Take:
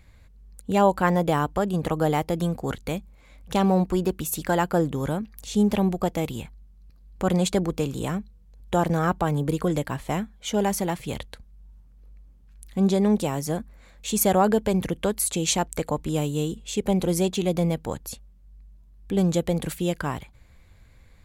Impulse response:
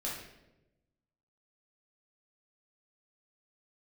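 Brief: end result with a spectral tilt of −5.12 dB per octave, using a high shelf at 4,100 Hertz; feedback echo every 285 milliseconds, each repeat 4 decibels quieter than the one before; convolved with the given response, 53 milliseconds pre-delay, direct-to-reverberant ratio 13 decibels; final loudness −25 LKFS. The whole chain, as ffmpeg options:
-filter_complex "[0:a]highshelf=frequency=4100:gain=3,aecho=1:1:285|570|855|1140|1425|1710|1995|2280|2565:0.631|0.398|0.25|0.158|0.0994|0.0626|0.0394|0.0249|0.0157,asplit=2[link_01][link_02];[1:a]atrim=start_sample=2205,adelay=53[link_03];[link_02][link_03]afir=irnorm=-1:irlink=0,volume=-15.5dB[link_04];[link_01][link_04]amix=inputs=2:normalize=0,volume=-2dB"

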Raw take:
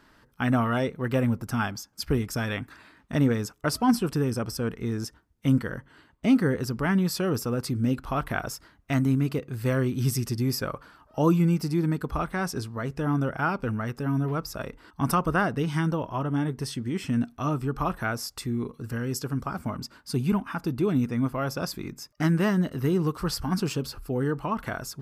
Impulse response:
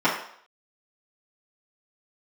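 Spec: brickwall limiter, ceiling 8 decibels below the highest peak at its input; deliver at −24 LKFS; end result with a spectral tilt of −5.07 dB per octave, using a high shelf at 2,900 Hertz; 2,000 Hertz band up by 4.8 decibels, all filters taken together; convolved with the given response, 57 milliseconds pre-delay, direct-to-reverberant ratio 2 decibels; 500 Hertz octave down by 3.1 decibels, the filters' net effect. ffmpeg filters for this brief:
-filter_complex "[0:a]equalizer=frequency=500:width_type=o:gain=-4.5,equalizer=frequency=2000:width_type=o:gain=4.5,highshelf=frequency=2900:gain=7,alimiter=limit=-16.5dB:level=0:latency=1,asplit=2[link_01][link_02];[1:a]atrim=start_sample=2205,adelay=57[link_03];[link_02][link_03]afir=irnorm=-1:irlink=0,volume=-20dB[link_04];[link_01][link_04]amix=inputs=2:normalize=0,volume=2.5dB"

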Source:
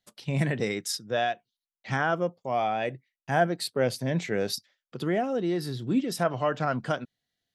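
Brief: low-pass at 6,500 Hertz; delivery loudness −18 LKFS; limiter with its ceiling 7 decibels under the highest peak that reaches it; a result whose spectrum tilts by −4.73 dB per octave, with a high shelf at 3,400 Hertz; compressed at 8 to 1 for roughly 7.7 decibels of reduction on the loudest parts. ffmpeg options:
ffmpeg -i in.wav -af "lowpass=6500,highshelf=frequency=3400:gain=7,acompressor=threshold=-25dB:ratio=8,volume=15dB,alimiter=limit=-6.5dB:level=0:latency=1" out.wav

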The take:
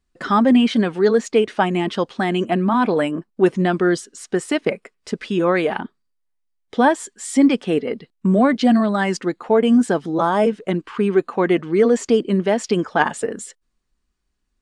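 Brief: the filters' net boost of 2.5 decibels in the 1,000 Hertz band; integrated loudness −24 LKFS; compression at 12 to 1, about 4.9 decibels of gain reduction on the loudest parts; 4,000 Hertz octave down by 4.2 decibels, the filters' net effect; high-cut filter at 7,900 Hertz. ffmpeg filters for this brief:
ffmpeg -i in.wav -af "lowpass=7900,equalizer=frequency=1000:width_type=o:gain=3.5,equalizer=frequency=4000:width_type=o:gain=-6.5,acompressor=threshold=-14dB:ratio=12,volume=-2.5dB" out.wav

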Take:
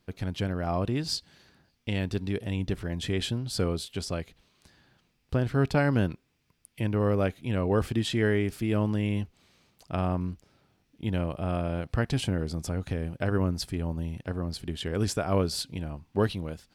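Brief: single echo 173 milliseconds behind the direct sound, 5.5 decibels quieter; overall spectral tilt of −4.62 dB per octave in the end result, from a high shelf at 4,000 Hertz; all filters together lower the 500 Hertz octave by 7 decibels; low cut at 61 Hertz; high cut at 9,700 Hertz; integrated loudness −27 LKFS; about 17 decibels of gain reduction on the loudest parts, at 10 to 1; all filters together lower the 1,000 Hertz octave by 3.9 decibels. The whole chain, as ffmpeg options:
ffmpeg -i in.wav -af "highpass=61,lowpass=9700,equalizer=frequency=500:width_type=o:gain=-8.5,equalizer=frequency=1000:width_type=o:gain=-3,highshelf=frequency=4000:gain=9,acompressor=threshold=-39dB:ratio=10,aecho=1:1:173:0.531,volume=15.5dB" out.wav

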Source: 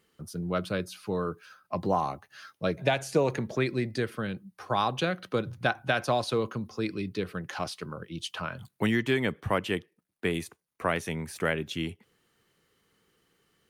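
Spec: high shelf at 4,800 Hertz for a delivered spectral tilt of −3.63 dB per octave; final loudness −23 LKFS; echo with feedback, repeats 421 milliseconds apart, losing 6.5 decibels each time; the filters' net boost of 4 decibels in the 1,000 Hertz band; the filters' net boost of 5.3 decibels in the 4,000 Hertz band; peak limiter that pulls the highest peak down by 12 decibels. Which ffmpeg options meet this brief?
ffmpeg -i in.wav -af "equalizer=frequency=1000:width_type=o:gain=5,equalizer=frequency=4000:width_type=o:gain=8.5,highshelf=frequency=4800:gain=-5,alimiter=limit=-20dB:level=0:latency=1,aecho=1:1:421|842|1263|1684|2105|2526:0.473|0.222|0.105|0.0491|0.0231|0.0109,volume=9dB" out.wav

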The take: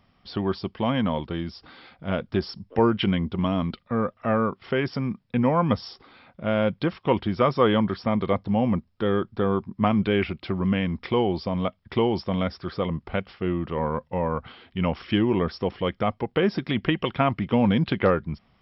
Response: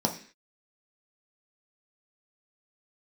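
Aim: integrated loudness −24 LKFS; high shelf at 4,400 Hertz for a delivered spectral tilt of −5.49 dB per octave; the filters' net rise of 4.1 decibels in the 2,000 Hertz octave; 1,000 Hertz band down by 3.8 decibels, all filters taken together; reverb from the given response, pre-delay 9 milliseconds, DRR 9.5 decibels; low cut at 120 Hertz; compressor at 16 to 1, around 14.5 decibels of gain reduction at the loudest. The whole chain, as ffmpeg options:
-filter_complex "[0:a]highpass=120,equalizer=frequency=1000:width_type=o:gain=-7,equalizer=frequency=2000:width_type=o:gain=8.5,highshelf=frequency=4400:gain=-7,acompressor=threshold=-31dB:ratio=16,asplit=2[link_01][link_02];[1:a]atrim=start_sample=2205,adelay=9[link_03];[link_02][link_03]afir=irnorm=-1:irlink=0,volume=-18.5dB[link_04];[link_01][link_04]amix=inputs=2:normalize=0,volume=11.5dB"

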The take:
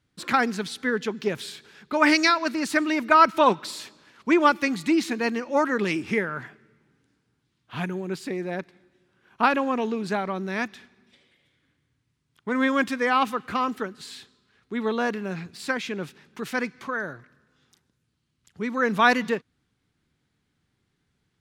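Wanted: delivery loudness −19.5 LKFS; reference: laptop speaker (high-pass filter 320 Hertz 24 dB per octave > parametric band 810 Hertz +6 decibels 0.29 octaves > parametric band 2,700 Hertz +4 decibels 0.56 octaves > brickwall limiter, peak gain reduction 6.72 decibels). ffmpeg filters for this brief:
ffmpeg -i in.wav -af "highpass=frequency=320:width=0.5412,highpass=frequency=320:width=1.3066,equalizer=frequency=810:width_type=o:width=0.29:gain=6,equalizer=frequency=2700:width_type=o:width=0.56:gain=4,volume=6.5dB,alimiter=limit=-4dB:level=0:latency=1" out.wav

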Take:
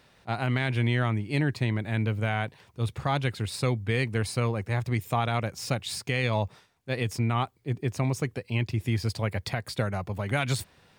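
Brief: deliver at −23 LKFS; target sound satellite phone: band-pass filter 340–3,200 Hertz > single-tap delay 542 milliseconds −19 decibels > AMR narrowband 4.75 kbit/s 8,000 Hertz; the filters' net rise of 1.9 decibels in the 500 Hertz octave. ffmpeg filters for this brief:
ffmpeg -i in.wav -af "highpass=340,lowpass=3200,equalizer=frequency=500:width_type=o:gain=3.5,aecho=1:1:542:0.112,volume=10.5dB" -ar 8000 -c:a libopencore_amrnb -b:a 4750 out.amr

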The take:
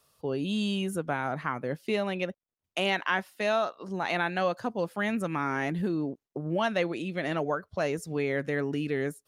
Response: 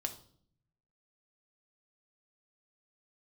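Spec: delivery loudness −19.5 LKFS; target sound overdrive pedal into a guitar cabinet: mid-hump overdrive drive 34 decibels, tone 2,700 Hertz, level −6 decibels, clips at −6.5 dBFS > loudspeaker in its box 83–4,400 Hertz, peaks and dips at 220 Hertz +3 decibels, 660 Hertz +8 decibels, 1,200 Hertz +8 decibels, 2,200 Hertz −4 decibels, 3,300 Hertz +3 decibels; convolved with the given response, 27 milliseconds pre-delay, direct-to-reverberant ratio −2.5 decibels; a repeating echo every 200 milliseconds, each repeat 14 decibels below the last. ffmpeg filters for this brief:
-filter_complex "[0:a]aecho=1:1:200|400:0.2|0.0399,asplit=2[link_01][link_02];[1:a]atrim=start_sample=2205,adelay=27[link_03];[link_02][link_03]afir=irnorm=-1:irlink=0,volume=2.5dB[link_04];[link_01][link_04]amix=inputs=2:normalize=0,asplit=2[link_05][link_06];[link_06]highpass=frequency=720:poles=1,volume=34dB,asoftclip=type=tanh:threshold=-6.5dB[link_07];[link_05][link_07]amix=inputs=2:normalize=0,lowpass=frequency=2700:poles=1,volume=-6dB,highpass=83,equalizer=frequency=220:width_type=q:width=4:gain=3,equalizer=frequency=660:width_type=q:width=4:gain=8,equalizer=frequency=1200:width_type=q:width=4:gain=8,equalizer=frequency=2200:width_type=q:width=4:gain=-4,equalizer=frequency=3300:width_type=q:width=4:gain=3,lowpass=frequency=4400:width=0.5412,lowpass=frequency=4400:width=1.3066,volume=-8dB"

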